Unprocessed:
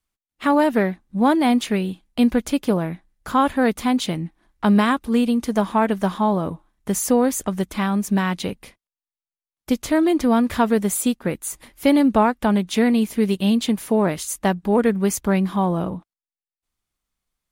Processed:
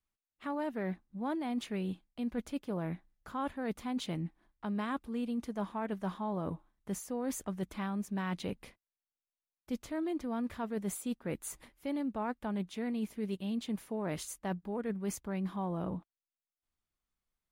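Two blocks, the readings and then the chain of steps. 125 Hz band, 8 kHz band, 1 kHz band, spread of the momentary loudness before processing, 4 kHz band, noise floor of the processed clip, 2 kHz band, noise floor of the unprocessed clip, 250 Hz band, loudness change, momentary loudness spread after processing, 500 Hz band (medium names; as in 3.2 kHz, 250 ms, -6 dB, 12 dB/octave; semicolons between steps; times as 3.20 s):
-14.0 dB, -17.0 dB, -18.0 dB, 9 LU, -18.0 dB, under -85 dBFS, -18.0 dB, under -85 dBFS, -17.0 dB, -17.5 dB, 5 LU, -17.5 dB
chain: treble shelf 3.7 kHz -6.5 dB; reverse; compression 10:1, threshold -25 dBFS, peak gain reduction 14.5 dB; reverse; trim -7.5 dB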